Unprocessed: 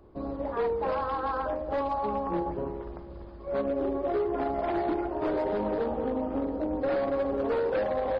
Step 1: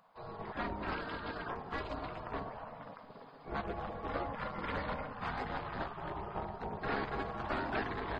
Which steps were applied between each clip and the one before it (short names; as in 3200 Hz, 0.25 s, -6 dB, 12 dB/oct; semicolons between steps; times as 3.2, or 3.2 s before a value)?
spectral gate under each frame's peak -15 dB weak; gain +1.5 dB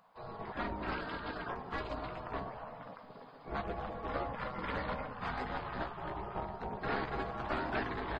doubler 16 ms -11 dB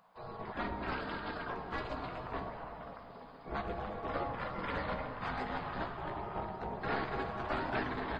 reverb RT60 3.2 s, pre-delay 29 ms, DRR 8.5 dB